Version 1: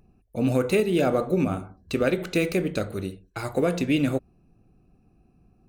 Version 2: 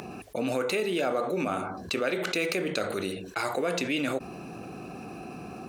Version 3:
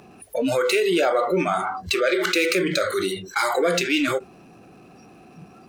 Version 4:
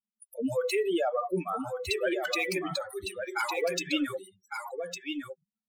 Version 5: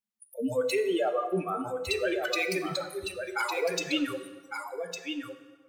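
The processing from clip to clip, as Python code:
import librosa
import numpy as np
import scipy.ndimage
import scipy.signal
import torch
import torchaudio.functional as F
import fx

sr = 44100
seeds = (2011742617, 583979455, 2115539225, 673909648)

y1 = fx.weighting(x, sr, curve='A')
y1 = fx.env_flatten(y1, sr, amount_pct=70)
y1 = y1 * librosa.db_to_amplitude(-4.0)
y2 = fx.power_curve(y1, sr, exponent=0.7)
y2 = fx.noise_reduce_blind(y2, sr, reduce_db=20)
y2 = y2 * librosa.db_to_amplitude(4.0)
y3 = fx.bin_expand(y2, sr, power=3.0)
y3 = y3 + 10.0 ** (-6.5 / 20.0) * np.pad(y3, (int(1156 * sr / 1000.0), 0))[:len(y3)]
y3 = y3 * librosa.db_to_amplitude(-3.0)
y4 = fx.rev_plate(y3, sr, seeds[0], rt60_s=1.4, hf_ratio=0.75, predelay_ms=0, drr_db=8.5)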